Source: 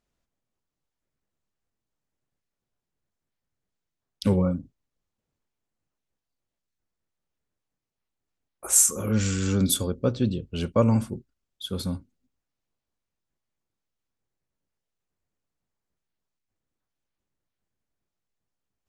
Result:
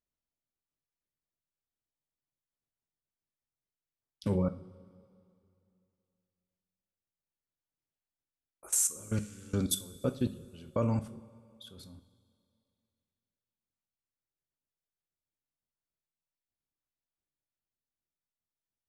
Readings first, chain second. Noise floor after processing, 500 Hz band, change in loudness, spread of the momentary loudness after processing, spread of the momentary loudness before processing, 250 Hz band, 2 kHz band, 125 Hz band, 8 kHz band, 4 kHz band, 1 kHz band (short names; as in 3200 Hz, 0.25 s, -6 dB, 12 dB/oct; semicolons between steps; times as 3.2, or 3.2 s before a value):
under -85 dBFS, -8.5 dB, -8.5 dB, 21 LU, 18 LU, -9.0 dB, -12.0 dB, -9.0 dB, -9.5 dB, -9.5 dB, -9.0 dB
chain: level quantiser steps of 23 dB; two-slope reverb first 0.34 s, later 2.6 s, from -18 dB, DRR 8.5 dB; gain -4.5 dB